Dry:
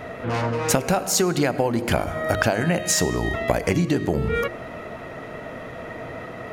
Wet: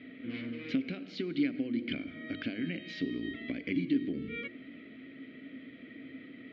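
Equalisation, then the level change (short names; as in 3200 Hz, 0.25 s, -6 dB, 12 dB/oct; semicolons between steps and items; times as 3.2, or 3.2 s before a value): vowel filter i; synth low-pass 4300 Hz, resonance Q 2.9; air absorption 220 m; 0.0 dB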